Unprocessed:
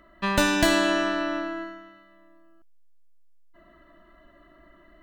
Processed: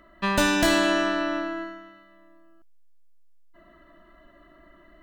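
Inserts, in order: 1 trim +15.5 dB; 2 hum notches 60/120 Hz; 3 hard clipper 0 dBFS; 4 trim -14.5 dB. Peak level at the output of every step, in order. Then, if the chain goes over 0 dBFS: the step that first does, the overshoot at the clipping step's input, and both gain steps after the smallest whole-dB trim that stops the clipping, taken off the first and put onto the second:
+9.5 dBFS, +9.5 dBFS, 0.0 dBFS, -14.5 dBFS; step 1, 9.5 dB; step 1 +5.5 dB, step 4 -4.5 dB

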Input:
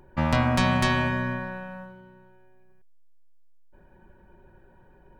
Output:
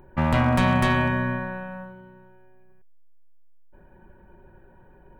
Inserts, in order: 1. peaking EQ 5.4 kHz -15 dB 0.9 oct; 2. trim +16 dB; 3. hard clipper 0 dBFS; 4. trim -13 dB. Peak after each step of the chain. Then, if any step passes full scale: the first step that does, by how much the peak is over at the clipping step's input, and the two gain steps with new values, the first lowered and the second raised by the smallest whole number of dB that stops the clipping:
-8.0 dBFS, +8.0 dBFS, 0.0 dBFS, -13.0 dBFS; step 2, 8.0 dB; step 2 +8 dB, step 4 -5 dB

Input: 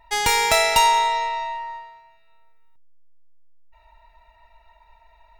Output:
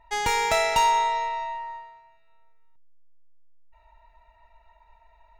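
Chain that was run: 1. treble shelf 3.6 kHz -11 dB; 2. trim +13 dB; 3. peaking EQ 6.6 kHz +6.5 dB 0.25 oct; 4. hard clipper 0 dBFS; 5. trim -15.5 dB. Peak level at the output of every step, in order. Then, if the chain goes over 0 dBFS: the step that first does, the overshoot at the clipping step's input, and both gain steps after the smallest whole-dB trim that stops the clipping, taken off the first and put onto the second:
-8.0 dBFS, +5.0 dBFS, +5.5 dBFS, 0.0 dBFS, -15.5 dBFS; step 2, 5.5 dB; step 2 +7 dB, step 5 -9.5 dB

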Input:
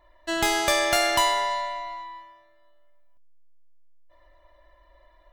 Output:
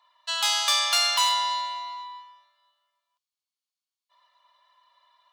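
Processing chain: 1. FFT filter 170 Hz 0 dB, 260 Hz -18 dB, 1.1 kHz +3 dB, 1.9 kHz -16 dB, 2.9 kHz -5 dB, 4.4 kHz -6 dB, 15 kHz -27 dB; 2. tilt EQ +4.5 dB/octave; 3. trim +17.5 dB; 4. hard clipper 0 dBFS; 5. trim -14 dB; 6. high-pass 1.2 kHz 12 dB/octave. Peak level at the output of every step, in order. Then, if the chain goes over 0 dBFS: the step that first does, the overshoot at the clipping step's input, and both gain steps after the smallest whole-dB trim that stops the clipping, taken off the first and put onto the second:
-13.5 dBFS, -9.0 dBFS, +8.5 dBFS, 0.0 dBFS, -14.0 dBFS, -9.0 dBFS; step 3, 8.5 dB; step 3 +8.5 dB, step 5 -5 dB

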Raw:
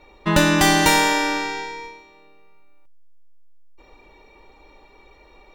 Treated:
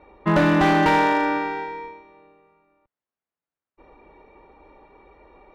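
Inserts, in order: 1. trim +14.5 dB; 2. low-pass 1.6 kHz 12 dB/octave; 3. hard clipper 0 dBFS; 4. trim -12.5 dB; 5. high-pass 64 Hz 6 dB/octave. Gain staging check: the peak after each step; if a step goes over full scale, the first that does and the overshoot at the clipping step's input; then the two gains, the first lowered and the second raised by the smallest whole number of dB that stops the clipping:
+12.0 dBFS, +9.5 dBFS, 0.0 dBFS, -12.5 dBFS, -9.5 dBFS; step 1, 9.5 dB; step 1 +4.5 dB, step 4 -2.5 dB

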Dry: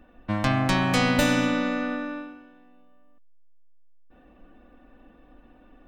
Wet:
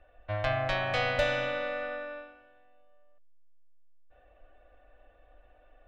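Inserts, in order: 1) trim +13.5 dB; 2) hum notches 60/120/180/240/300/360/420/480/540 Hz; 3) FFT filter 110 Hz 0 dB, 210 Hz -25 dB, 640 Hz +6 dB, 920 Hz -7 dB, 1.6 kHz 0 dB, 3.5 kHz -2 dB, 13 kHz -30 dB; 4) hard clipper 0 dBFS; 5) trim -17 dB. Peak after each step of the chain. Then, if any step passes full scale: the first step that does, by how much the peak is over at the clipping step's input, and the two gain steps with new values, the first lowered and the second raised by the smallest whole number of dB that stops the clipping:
+5.5 dBFS, +5.0 dBFS, +4.5 dBFS, 0.0 dBFS, -17.0 dBFS; step 1, 4.5 dB; step 1 +8.5 dB, step 5 -12 dB

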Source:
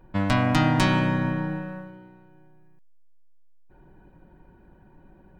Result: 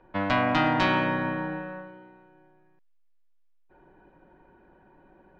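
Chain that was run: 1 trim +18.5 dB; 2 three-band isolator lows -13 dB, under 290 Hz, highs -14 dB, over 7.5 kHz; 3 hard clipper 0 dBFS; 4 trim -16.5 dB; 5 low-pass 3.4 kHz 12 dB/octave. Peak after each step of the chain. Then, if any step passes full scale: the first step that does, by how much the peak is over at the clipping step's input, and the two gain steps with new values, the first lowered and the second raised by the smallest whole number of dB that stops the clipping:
+11.5 dBFS, +8.5 dBFS, 0.0 dBFS, -16.5 dBFS, -16.0 dBFS; step 1, 8.5 dB; step 1 +9.5 dB, step 4 -7.5 dB

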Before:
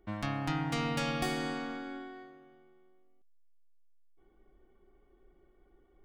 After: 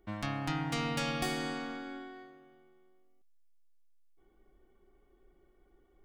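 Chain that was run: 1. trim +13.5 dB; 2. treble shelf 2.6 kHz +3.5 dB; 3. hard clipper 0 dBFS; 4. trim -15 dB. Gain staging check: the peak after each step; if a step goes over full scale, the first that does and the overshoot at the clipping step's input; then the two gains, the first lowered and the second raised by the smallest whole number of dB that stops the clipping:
-5.5 dBFS, -4.5 dBFS, -4.5 dBFS, -19.5 dBFS; nothing clips

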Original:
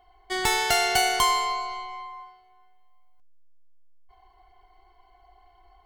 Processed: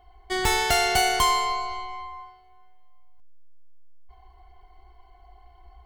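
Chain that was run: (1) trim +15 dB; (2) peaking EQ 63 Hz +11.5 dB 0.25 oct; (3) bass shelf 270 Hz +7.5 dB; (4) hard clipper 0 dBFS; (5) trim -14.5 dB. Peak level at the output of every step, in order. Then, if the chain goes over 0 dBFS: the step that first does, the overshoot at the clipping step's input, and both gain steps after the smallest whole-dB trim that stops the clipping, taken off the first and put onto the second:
+6.5 dBFS, +6.5 dBFS, +9.0 dBFS, 0.0 dBFS, -14.5 dBFS; step 1, 9.0 dB; step 1 +6 dB, step 5 -5.5 dB

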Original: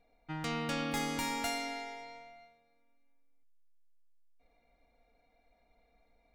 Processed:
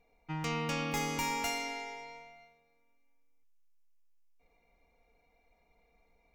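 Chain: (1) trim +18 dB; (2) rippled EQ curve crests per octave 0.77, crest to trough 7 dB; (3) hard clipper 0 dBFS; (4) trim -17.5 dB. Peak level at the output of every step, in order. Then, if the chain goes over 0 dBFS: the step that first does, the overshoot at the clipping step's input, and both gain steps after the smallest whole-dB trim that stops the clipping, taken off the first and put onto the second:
-2.0 dBFS, -2.5 dBFS, -2.5 dBFS, -20.0 dBFS; nothing clips

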